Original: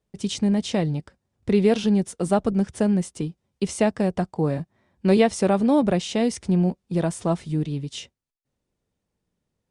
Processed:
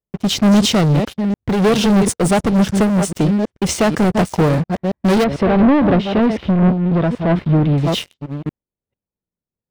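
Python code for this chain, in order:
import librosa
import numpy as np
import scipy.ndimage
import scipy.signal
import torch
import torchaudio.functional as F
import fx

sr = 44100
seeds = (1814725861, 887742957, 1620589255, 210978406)

y = fx.reverse_delay(x, sr, ms=447, wet_db=-11.5)
y = fx.env_lowpass(y, sr, base_hz=1500.0, full_db=-18.5)
y = fx.leveller(y, sr, passes=5)
y = fx.air_absorb(y, sr, metres=390.0, at=(5.24, 7.78))
y = fx.am_noise(y, sr, seeds[0], hz=5.7, depth_pct=55)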